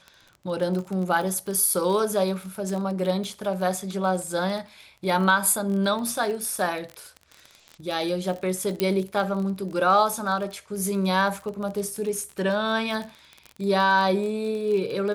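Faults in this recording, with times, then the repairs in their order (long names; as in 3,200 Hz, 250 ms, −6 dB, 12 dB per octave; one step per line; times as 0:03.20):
surface crackle 29 per second −30 dBFS
0:08.80: click −9 dBFS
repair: click removal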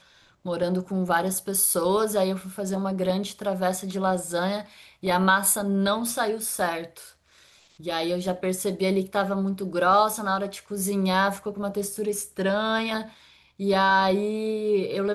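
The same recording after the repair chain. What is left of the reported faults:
none of them is left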